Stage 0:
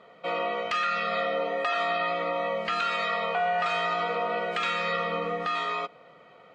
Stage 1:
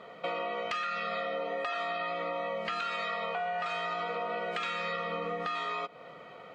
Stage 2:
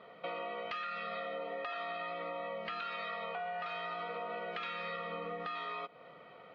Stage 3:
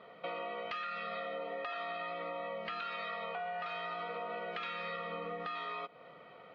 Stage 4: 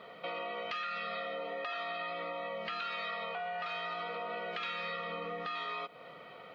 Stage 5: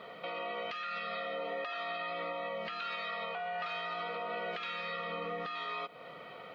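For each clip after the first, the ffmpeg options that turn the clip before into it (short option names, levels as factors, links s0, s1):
-af "acompressor=threshold=0.0141:ratio=5,volume=1.68"
-af "lowpass=f=4500:w=0.5412,lowpass=f=4500:w=1.3066,volume=0.501"
-af anull
-filter_complex "[0:a]asplit=2[s0][s1];[s1]alimiter=level_in=5.31:limit=0.0631:level=0:latency=1:release=26,volume=0.188,volume=1.26[s2];[s0][s2]amix=inputs=2:normalize=0,highshelf=f=3400:g=9,volume=0.631"
-af "alimiter=level_in=2.37:limit=0.0631:level=0:latency=1:release=427,volume=0.422,volume=1.33"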